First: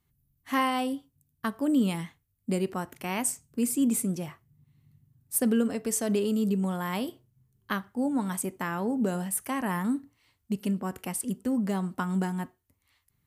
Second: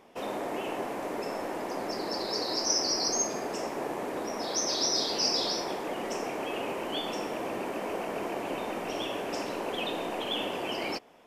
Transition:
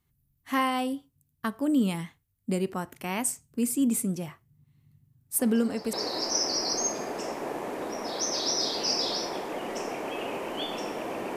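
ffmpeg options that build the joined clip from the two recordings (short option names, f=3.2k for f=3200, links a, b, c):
-filter_complex "[1:a]asplit=2[a][b];[0:a]apad=whole_dur=11.36,atrim=end=11.36,atrim=end=5.932[c];[b]atrim=start=2.278:end=7.71[d];[a]atrim=start=1.74:end=2.28,asetpts=PTS-STARTPTS,volume=-12dB,afade=t=in:d=0.004:c=hsin,afade=t=out:st=0.536:d=0.004:c=hsin,adelay=5390[e];[c][d]acrossfade=d=0.004:c1=hsin:c2=hsin[f];[f][e]amix=inputs=2:normalize=0"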